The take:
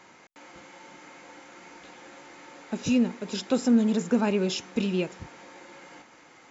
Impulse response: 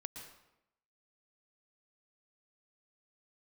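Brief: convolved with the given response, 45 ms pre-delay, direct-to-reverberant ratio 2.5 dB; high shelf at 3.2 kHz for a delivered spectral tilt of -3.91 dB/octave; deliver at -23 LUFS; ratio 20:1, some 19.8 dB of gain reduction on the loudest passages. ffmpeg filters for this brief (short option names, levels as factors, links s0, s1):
-filter_complex "[0:a]highshelf=f=3200:g=3,acompressor=threshold=0.0141:ratio=20,asplit=2[s0][s1];[1:a]atrim=start_sample=2205,adelay=45[s2];[s1][s2]afir=irnorm=-1:irlink=0,volume=1.06[s3];[s0][s3]amix=inputs=2:normalize=0,volume=8.91"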